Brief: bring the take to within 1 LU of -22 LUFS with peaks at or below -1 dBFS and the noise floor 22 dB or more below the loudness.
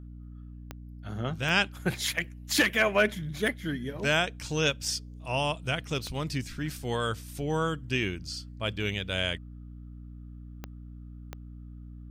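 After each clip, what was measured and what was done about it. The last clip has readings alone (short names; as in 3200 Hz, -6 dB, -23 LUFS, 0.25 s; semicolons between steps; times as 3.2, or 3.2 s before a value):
clicks 6; hum 60 Hz; harmonics up to 300 Hz; hum level -41 dBFS; loudness -29.5 LUFS; peak -11.5 dBFS; loudness target -22.0 LUFS
-> de-click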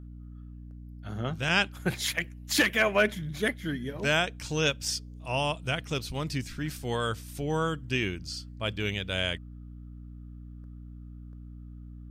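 clicks 0; hum 60 Hz; harmonics up to 300 Hz; hum level -41 dBFS
-> notches 60/120/180/240/300 Hz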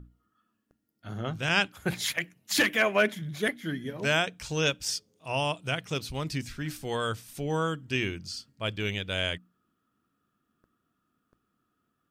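hum none; loudness -29.5 LUFS; peak -11.5 dBFS; loudness target -22.0 LUFS
-> gain +7.5 dB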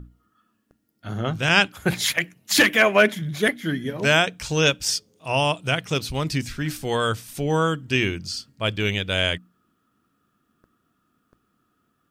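loudness -22.0 LUFS; peak -4.0 dBFS; noise floor -71 dBFS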